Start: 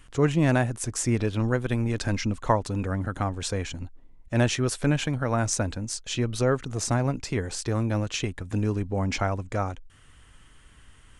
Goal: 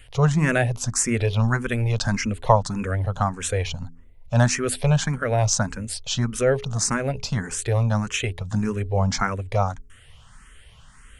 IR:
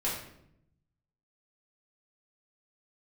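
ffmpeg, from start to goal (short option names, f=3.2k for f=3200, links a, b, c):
-filter_complex "[0:a]equalizer=f=310:t=o:w=0.4:g=-15,bandreject=f=83.47:t=h:w=4,bandreject=f=166.94:t=h:w=4,bandreject=f=250.41:t=h:w=4,bandreject=f=333.88:t=h:w=4,bandreject=f=417.35:t=h:w=4,asplit=2[a][b];[b]afreqshift=1.7[c];[a][c]amix=inputs=2:normalize=1,volume=8dB"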